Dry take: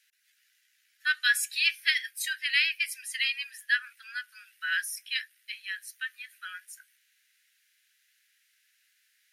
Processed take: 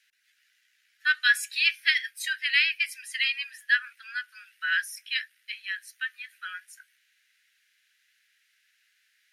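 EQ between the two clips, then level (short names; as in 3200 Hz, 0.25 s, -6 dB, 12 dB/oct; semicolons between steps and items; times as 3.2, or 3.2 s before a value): LPF 3700 Hz 6 dB/oct; +4.0 dB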